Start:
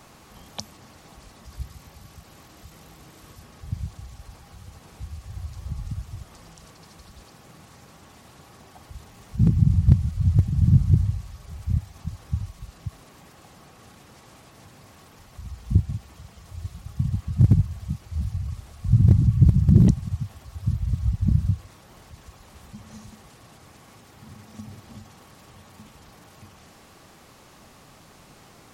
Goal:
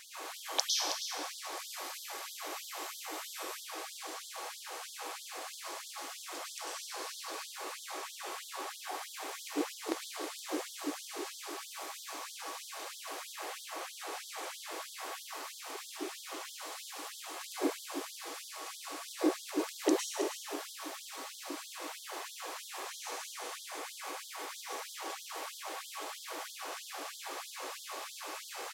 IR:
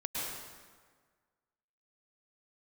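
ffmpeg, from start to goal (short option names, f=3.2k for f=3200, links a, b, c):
-filter_complex "[0:a]aecho=1:1:320:0.335[a];[1:a]atrim=start_sample=2205[b];[a][b]afir=irnorm=-1:irlink=0,afftfilt=real='re*gte(b*sr/1024,270*pow(3200/270,0.5+0.5*sin(2*PI*3.1*pts/sr)))':imag='im*gte(b*sr/1024,270*pow(3200/270,0.5+0.5*sin(2*PI*3.1*pts/sr)))':win_size=1024:overlap=0.75,volume=6.5dB"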